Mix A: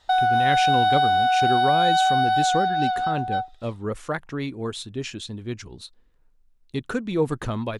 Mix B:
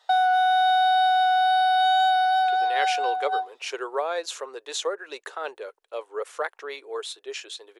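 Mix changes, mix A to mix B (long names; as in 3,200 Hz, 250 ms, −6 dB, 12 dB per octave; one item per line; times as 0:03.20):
speech: entry +2.30 s
master: add elliptic high-pass filter 420 Hz, stop band 50 dB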